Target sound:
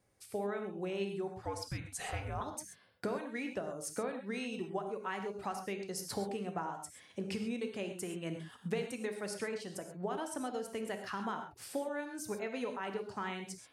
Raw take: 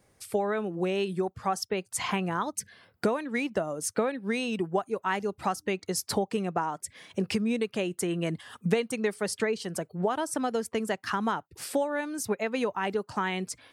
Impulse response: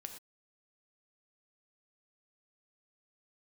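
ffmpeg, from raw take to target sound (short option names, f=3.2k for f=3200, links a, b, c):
-filter_complex "[0:a]asettb=1/sr,asplit=3[a][b][c];[a]atrim=end=1.454[d];[b]atrim=start=1.45:end=2.41,asetpts=PTS-STARTPTS,afade=t=in:d=0.004:c=qsin,afade=t=out:st=0.956:d=0.004:c=qsin,afreqshift=-280[e];[c]atrim=start=2.406[f];[d][e]acrossfade=d=0.004:c1=hsin:c2=qsin[g];[g][f]acrossfade=d=0.004:c1=qsin:c2=hsin[h];[1:a]atrim=start_sample=2205,asetrate=39690,aresample=44100[i];[h][i]afir=irnorm=-1:irlink=0,volume=-6dB"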